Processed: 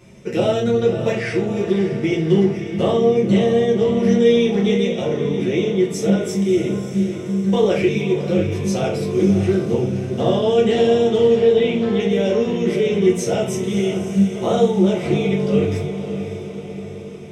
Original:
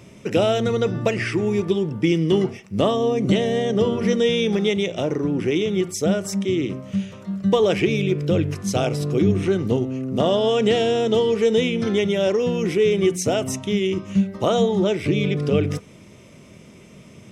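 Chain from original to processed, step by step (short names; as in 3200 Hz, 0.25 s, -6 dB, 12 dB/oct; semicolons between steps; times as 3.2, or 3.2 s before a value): 11.35–12 Chebyshev low-pass 4900 Hz, order 8; on a send: diffused feedback echo 0.579 s, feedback 58%, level -9.5 dB; on the sum: shoebox room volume 39 m³, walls mixed, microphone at 0.93 m; gain -6.5 dB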